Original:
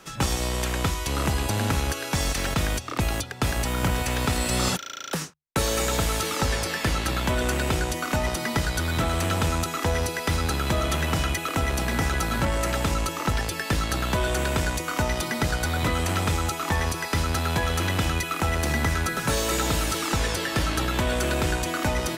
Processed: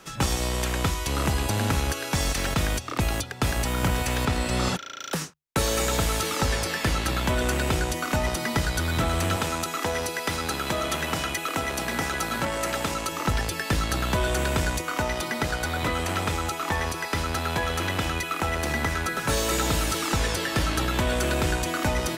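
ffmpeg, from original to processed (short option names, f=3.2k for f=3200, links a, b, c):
-filter_complex "[0:a]asettb=1/sr,asplit=3[a][b][c];[a]atrim=end=4.254[d];[b]atrim=start=4.25:end=5,asetpts=PTS-STARTPTS,afade=t=in:d=0.004:c=qsin,afade=t=out:st=0.746:d=0.004:c=qsin,lowpass=f=3.7k:p=1[e];[c]atrim=start=4.996[f];[d][e]acrossfade=d=0.004:c1=hsin:c2=qsin[g];[g][f]acrossfade=d=0.004:c1=qsin:c2=hsin,asettb=1/sr,asplit=3[h][i][j];[h]atrim=end=9.364[k];[i]atrim=start=9.36:end=13.12,asetpts=PTS-STARTPTS,afade=t=in:d=0.004:c=qsin,afade=t=out:st=3.756:d=0.004:c=qsin,highpass=f=260:p=1[l];[j]atrim=start=13.116[m];[k][l]acrossfade=d=0.004:c1=hsin:c2=qsin[n];[n][m]acrossfade=d=0.004:c1=qsin:c2=hsin,asettb=1/sr,asplit=3[o][p][q];[o]atrim=end=14.814[r];[p]atrim=start=14.81:end=19.29,asetpts=PTS-STARTPTS,afade=t=in:d=0.004:c=qsin,afade=t=out:st=4.476:d=0.004:c=qsin,bass=f=250:g=-5,treble=f=4k:g=-3[s];[q]atrim=start=19.286[t];[r][s]acrossfade=d=0.004:c1=hsin:c2=qsin[u];[u][t]acrossfade=d=0.004:c1=qsin:c2=hsin"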